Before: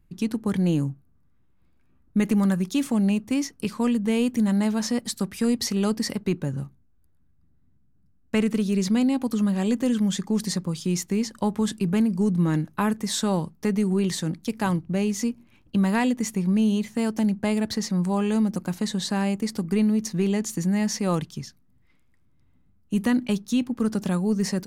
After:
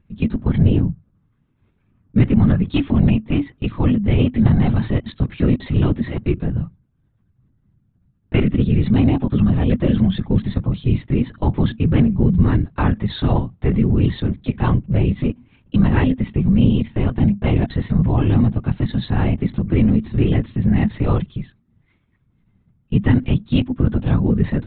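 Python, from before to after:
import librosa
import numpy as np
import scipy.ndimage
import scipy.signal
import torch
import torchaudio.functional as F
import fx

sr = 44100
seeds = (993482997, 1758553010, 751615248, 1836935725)

y = scipy.signal.sosfilt(scipy.signal.butter(2, 51.0, 'highpass', fs=sr, output='sos'), x)
y = fx.lpc_vocoder(y, sr, seeds[0], excitation='whisper', order=16)
y = fx.peak_eq(y, sr, hz=110.0, db=9.0, octaves=1.2)
y = y * librosa.db_to_amplitude(3.5)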